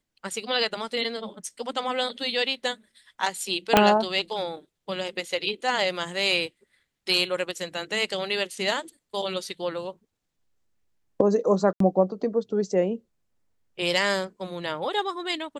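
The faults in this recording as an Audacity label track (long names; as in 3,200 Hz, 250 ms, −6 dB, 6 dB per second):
3.770000	3.770000	click −1 dBFS
11.730000	11.800000	drop-out 73 ms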